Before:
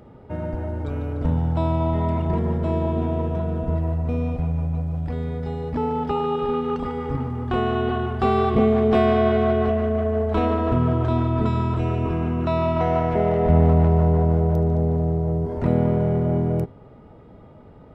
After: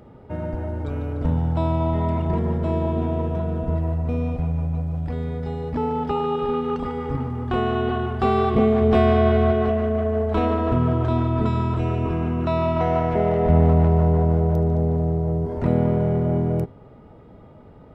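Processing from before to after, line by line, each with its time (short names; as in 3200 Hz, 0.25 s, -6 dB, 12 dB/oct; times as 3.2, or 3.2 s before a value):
8.81–9.52 bell 64 Hz +8.5 dB 1.2 oct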